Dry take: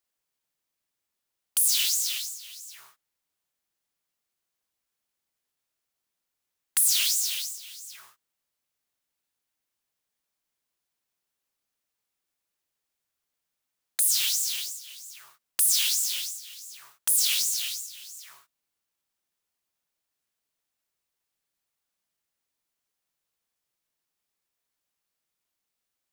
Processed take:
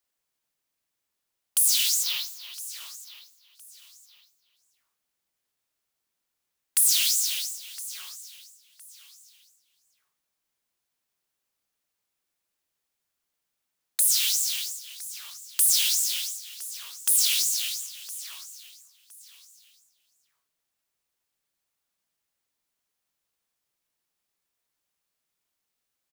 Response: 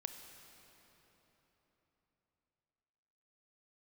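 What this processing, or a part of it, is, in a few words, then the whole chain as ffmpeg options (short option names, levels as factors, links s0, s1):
one-band saturation: -filter_complex "[0:a]asettb=1/sr,asplit=3[s0][s1][s2];[s0]atrim=end=2.034[s3];[s1]atrim=start=2.03:end=2.54,asetpts=PTS-STARTPTS,afade=t=in:d=0.004:c=qsin,afade=t=out:st=0.506:d=0.004:c=qsin,equalizer=f=125:t=o:w=1:g=-5,equalizer=f=250:t=o:w=1:g=4,equalizer=f=500:t=o:w=1:g=6,equalizer=f=1000:t=o:w=1:g=12,equalizer=f=4000:t=o:w=1:g=5,equalizer=f=8000:t=o:w=1:g=-12[s4];[s2]atrim=start=2.536[s5];[s3][s4]acrossfade=d=0.004:c1=hsin:c2=qsin[s6];[s6][s5]acrossfade=d=0.004:c1=qsin:c2=hsin,aecho=1:1:1013|2026:0.119|0.0345,acrossover=split=360|2400[s7][s8][s9];[s8]asoftclip=type=tanh:threshold=0.0133[s10];[s7][s10][s9]amix=inputs=3:normalize=0,volume=1.19"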